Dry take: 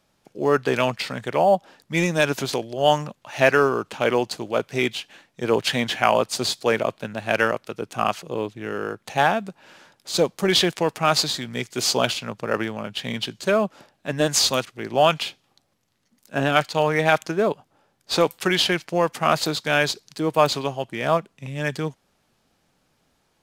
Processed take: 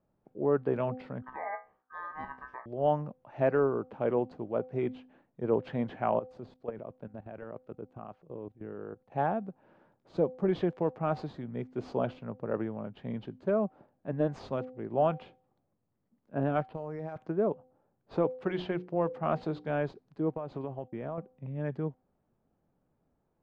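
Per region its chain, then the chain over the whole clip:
0:01.22–0:02.66: tilt shelving filter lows +8.5 dB, about 820 Hz + ring modulation 1,400 Hz + tuned comb filter 64 Hz, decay 0.27 s, mix 80%
0:06.19–0:09.12: low-shelf EQ 89 Hz +4 dB + output level in coarse steps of 17 dB
0:16.67–0:17.16: low-pass filter 5,100 Hz + downward compressor 8 to 1, threshold −25 dBFS + bad sample-rate conversion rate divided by 6×, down none, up hold
0:18.32–0:19.70: mains-hum notches 60/120/180/240/300/360/420/480 Hz + dynamic equaliser 3,600 Hz, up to +5 dB, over −35 dBFS, Q 0.85
0:20.34–0:21.18: downward compressor 8 to 1, threshold −23 dBFS + noise gate −45 dBFS, range −25 dB
whole clip: Bessel low-pass filter 620 Hz, order 2; hum removal 255.2 Hz, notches 3; level −5.5 dB

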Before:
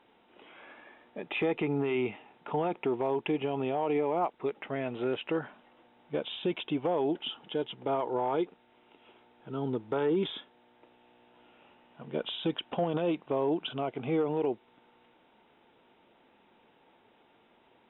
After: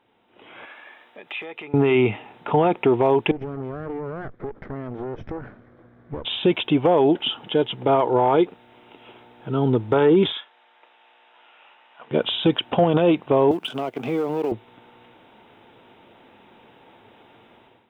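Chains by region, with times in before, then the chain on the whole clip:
0:00.65–0:01.74: downward compressor 2 to 1, threshold −45 dBFS + high-pass filter 1,300 Hz 6 dB per octave
0:03.31–0:06.25: lower of the sound and its delayed copy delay 0.54 ms + downward compressor 5 to 1, threshold −40 dBFS + low-pass filter 1,100 Hz
0:10.32–0:12.11: high-pass filter 970 Hz + high-frequency loss of the air 90 metres
0:13.51–0:14.52: mu-law and A-law mismatch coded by A + high-pass filter 160 Hz 24 dB per octave + downward compressor 2 to 1, threshold −37 dBFS
whole clip: automatic gain control gain up to 14 dB; parametric band 110 Hz +9.5 dB 0.41 octaves; level −2 dB

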